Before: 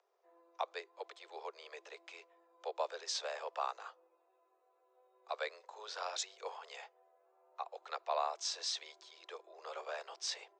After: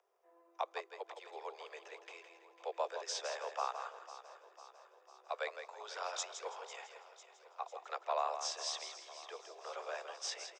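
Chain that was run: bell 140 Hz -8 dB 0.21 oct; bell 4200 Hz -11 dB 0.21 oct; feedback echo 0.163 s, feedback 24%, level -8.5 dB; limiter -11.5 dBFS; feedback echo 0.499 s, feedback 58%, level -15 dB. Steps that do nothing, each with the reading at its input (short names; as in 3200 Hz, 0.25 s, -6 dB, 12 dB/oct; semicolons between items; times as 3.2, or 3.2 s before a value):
bell 140 Hz: input band starts at 320 Hz; limiter -11.5 dBFS: input peak -22.5 dBFS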